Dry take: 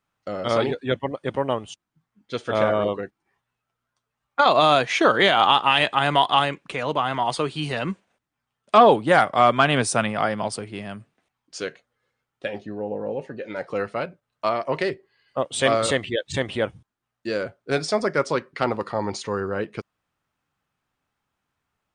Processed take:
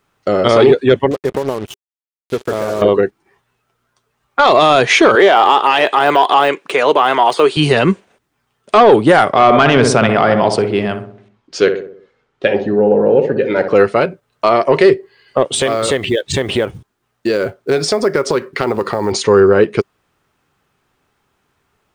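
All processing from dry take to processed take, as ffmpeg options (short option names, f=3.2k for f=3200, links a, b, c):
-filter_complex "[0:a]asettb=1/sr,asplit=3[a][b][c];[a]atrim=end=1.114[d];[b]atrim=start=1.11:end=2.82,asetpts=PTS-STARTPTS,afade=t=in:d=0.004:c=qsin,afade=t=out:st=1.706:d=0.004:c=qsin,equalizer=f=5.8k:w=0.5:g=-10,acompressor=threshold=-30dB:ratio=8:attack=3.2:release=140:knee=1:detection=peak,acrusher=bits=6:mix=0:aa=0.5[e];[c]atrim=start=2.816[f];[d][e]acrossfade=d=0.004:c1=hsin:c2=qsin[g];[g][f]acrossfade=d=0.004:c1=qsin:c2=hsin,asettb=1/sr,asplit=3[h][i][j];[h]atrim=end=5.154[k];[i]atrim=start=5.15:end=7.57,asetpts=PTS-STARTPTS,afade=t=in:d=0.004:c=qsin,afade=t=out:st=2.416:d=0.004:c=qsin,deesser=0.9,highpass=380[l];[j]atrim=start=7.566[m];[k][l]acrossfade=d=0.004:c1=hsin:c2=qsin[n];[n][m]acrossfade=d=0.004:c1=qsin:c2=hsin,asettb=1/sr,asplit=3[o][p][q];[o]atrim=end=9.334[r];[p]atrim=start=9.33:end=13.75,asetpts=PTS-STARTPTS,afade=t=in:d=0.004:c=qsin,afade=t=out:st=4.416:d=0.004:c=qsin,lowpass=4.9k,asplit=2[s][t];[t]adelay=63,lowpass=f=1.2k:p=1,volume=-7.5dB,asplit=2[u][v];[v]adelay=63,lowpass=f=1.2k:p=1,volume=0.53,asplit=2[w][x];[x]adelay=63,lowpass=f=1.2k:p=1,volume=0.53,asplit=2[y][z];[z]adelay=63,lowpass=f=1.2k:p=1,volume=0.53,asplit=2[aa][ab];[ab]adelay=63,lowpass=f=1.2k:p=1,volume=0.53,asplit=2[ac][ad];[ad]adelay=63,lowpass=f=1.2k:p=1,volume=0.53[ae];[s][u][w][y][aa][ac][ae]amix=inputs=7:normalize=0,atrim=end_sample=194922[af];[q]atrim=start=13.746[ag];[r][af]acrossfade=d=0.004:c1=hsin:c2=qsin[ah];[ah][ag]acrossfade=d=0.004:c1=qsin:c2=hsin,asettb=1/sr,asplit=3[ai][aj][ak];[ai]atrim=end=15.544[al];[aj]atrim=start=15.54:end=19.12,asetpts=PTS-STARTPTS,afade=t=in:d=0.004:c=qsin,afade=t=out:st=3.576:d=0.004:c=qsin,acompressor=threshold=-28dB:ratio=5:attack=3.2:release=140:knee=1:detection=peak,acrusher=bits=8:mode=log:mix=0:aa=0.000001[am];[ak]atrim=start=19.116[an];[al][am]acrossfade=d=0.004:c1=hsin:c2=qsin[ao];[ao][an]acrossfade=d=0.004:c1=qsin:c2=hsin,equalizer=f=400:w=3.7:g=8.5,acontrast=51,alimiter=limit=-9dB:level=0:latency=1:release=52,volume=8dB"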